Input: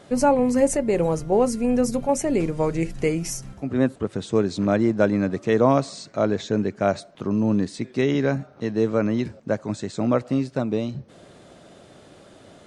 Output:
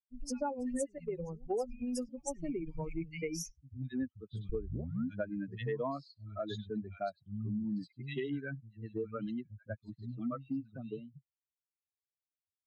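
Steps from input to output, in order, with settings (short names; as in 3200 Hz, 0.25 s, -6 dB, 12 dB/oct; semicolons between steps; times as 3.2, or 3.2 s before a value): per-bin expansion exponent 3; 4.49 tape start 0.51 s; three bands offset in time lows, highs, mids 90/190 ms, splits 150/2500 Hz; compressor 4:1, threshold -35 dBFS, peak gain reduction 15.5 dB; low-pass opened by the level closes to 580 Hz, open at -33.5 dBFS; 0.98–2.09 three-band expander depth 70%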